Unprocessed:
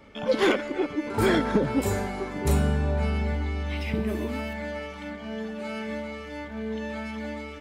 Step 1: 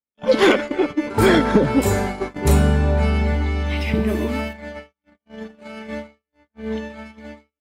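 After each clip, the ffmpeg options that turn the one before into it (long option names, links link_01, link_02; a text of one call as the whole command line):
ffmpeg -i in.wav -af "agate=range=-58dB:threshold=-31dB:ratio=16:detection=peak,volume=7.5dB" out.wav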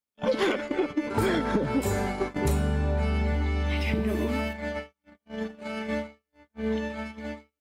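ffmpeg -i in.wav -af "acompressor=threshold=-26dB:ratio=4,volume=1.5dB" out.wav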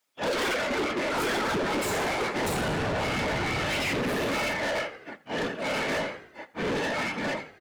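ffmpeg -i in.wav -filter_complex "[0:a]afftfilt=real='hypot(re,im)*cos(2*PI*random(0))':imag='hypot(re,im)*sin(2*PI*random(1))':win_size=512:overlap=0.75,asplit=5[link_01][link_02][link_03][link_04][link_05];[link_02]adelay=83,afreqshift=-58,volume=-19.5dB[link_06];[link_03]adelay=166,afreqshift=-116,volume=-25.9dB[link_07];[link_04]adelay=249,afreqshift=-174,volume=-32.3dB[link_08];[link_05]adelay=332,afreqshift=-232,volume=-38.6dB[link_09];[link_01][link_06][link_07][link_08][link_09]amix=inputs=5:normalize=0,asplit=2[link_10][link_11];[link_11]highpass=frequency=720:poles=1,volume=35dB,asoftclip=type=tanh:threshold=-16dB[link_12];[link_10][link_12]amix=inputs=2:normalize=0,lowpass=frequency=6400:poles=1,volume=-6dB,volume=-5dB" out.wav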